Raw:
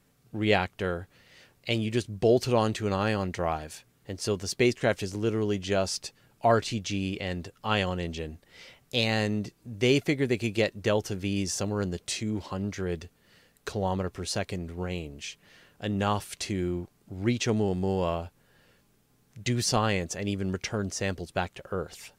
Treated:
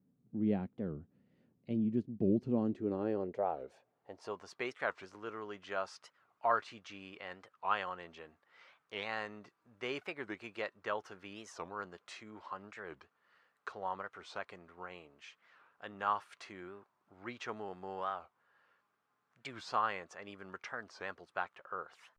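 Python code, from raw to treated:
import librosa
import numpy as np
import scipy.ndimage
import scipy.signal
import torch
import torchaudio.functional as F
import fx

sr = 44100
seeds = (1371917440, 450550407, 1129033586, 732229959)

y = fx.filter_sweep_bandpass(x, sr, from_hz=220.0, to_hz=1200.0, start_s=2.44, end_s=4.62, q=2.6)
y = fx.record_warp(y, sr, rpm=45.0, depth_cents=250.0)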